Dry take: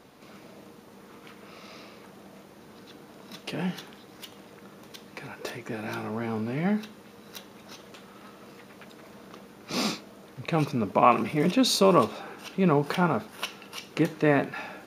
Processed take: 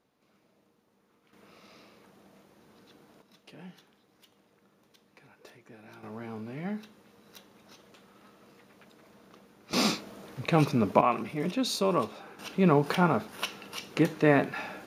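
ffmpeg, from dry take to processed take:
-af "asetnsamples=n=441:p=0,asendcmd='1.33 volume volume -9dB;3.22 volume volume -17dB;6.03 volume volume -9dB;9.73 volume volume 2dB;11.01 volume volume -7dB;12.39 volume volume 0dB',volume=0.106"

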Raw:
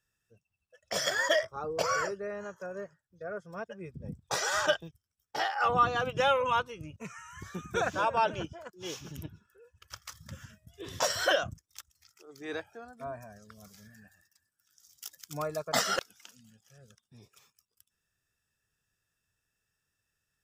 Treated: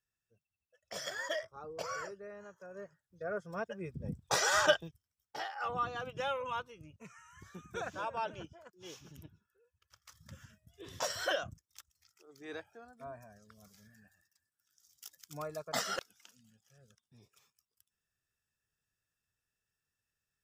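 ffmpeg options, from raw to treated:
-af "volume=4.47,afade=t=in:st=2.67:d=0.67:silence=0.266073,afade=t=out:st=4.62:d=0.83:silence=0.281838,afade=t=out:st=9.07:d=0.9:silence=0.354813,afade=t=in:st=9.97:d=0.31:silence=0.251189"

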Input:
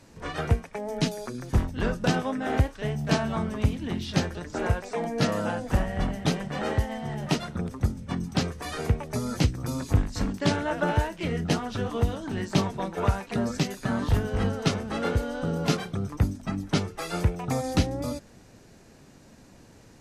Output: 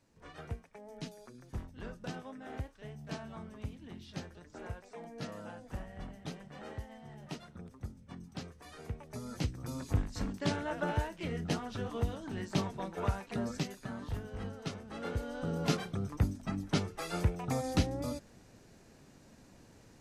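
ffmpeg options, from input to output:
-af "volume=1.06,afade=t=in:st=8.83:d=1.09:silence=0.354813,afade=t=out:st=13.54:d=0.4:silence=0.473151,afade=t=in:st=14.86:d=0.8:silence=0.354813"

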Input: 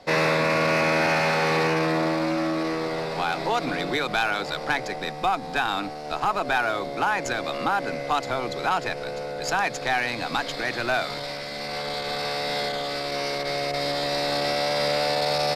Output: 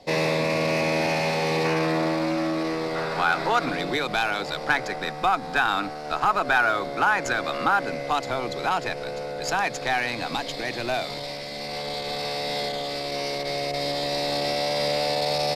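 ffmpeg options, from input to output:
-af "asetnsamples=n=441:p=0,asendcmd='1.65 equalizer g -3;2.95 equalizer g 8.5;3.69 equalizer g -1.5;4.69 equalizer g 5.5;7.83 equalizer g -1.5;10.34 equalizer g -9.5',equalizer=f=1400:t=o:w=0.65:g=-13.5"

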